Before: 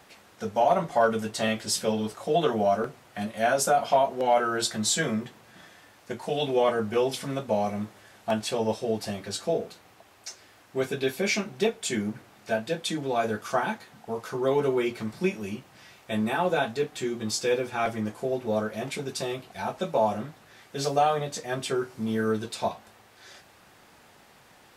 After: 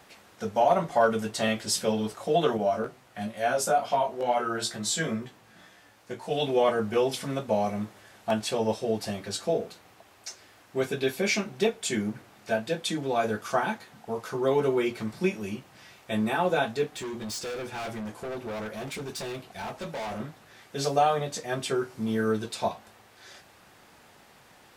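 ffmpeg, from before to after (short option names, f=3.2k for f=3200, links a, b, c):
-filter_complex "[0:a]asettb=1/sr,asplit=3[a][b][c];[a]atrim=end=2.574[d];[b]atrim=start=2.57:end=6.31,asetpts=PTS-STARTPTS,afade=t=in:d=0.004:c=qsin,afade=t=out:st=3.736:d=0.004:c=qsin,flanger=delay=15.5:depth=2.9:speed=2.2[e];[c]atrim=start=6.306[f];[d][e]acrossfade=d=0.004:c1=hsin:c2=qsin[g];[g][f]acrossfade=d=0.004:c1=qsin:c2=hsin,asettb=1/sr,asplit=3[h][i][j];[h]atrim=end=16.964[k];[i]atrim=start=16.96:end=20.2,asetpts=PTS-STARTPTS,afade=t=in:d=0.004:c=qsin,afade=t=out:st=3.236:d=0.004:c=qsin,volume=32.5dB,asoftclip=hard,volume=-32.5dB[l];[j]atrim=start=20.196[m];[k][l]acrossfade=d=0.004:c1=hsin:c2=qsin[n];[n][m]acrossfade=d=0.004:c1=qsin:c2=hsin"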